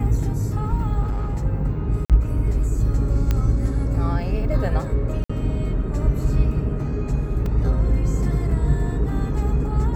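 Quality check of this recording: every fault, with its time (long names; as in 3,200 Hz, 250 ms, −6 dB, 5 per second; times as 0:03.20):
0:01.01–0:01.46: clipping −19.5 dBFS
0:02.05–0:02.10: drop-out 47 ms
0:03.31: click −9 dBFS
0:05.24–0:05.29: drop-out 55 ms
0:07.46: drop-out 2.6 ms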